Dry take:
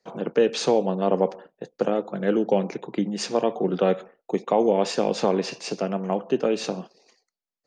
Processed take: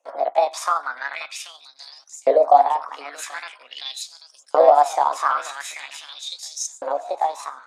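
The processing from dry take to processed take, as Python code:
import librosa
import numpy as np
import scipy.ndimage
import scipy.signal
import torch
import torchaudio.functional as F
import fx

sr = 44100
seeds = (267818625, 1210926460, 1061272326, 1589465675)

y = fx.pitch_heads(x, sr, semitones=6.0)
y = fx.echo_feedback(y, sr, ms=784, feedback_pct=21, wet_db=-3.5)
y = fx.filter_lfo_highpass(y, sr, shape='saw_up', hz=0.44, low_hz=510.0, high_hz=7700.0, q=6.5)
y = fx.record_warp(y, sr, rpm=45.0, depth_cents=100.0)
y = F.gain(torch.from_numpy(y), -2.5).numpy()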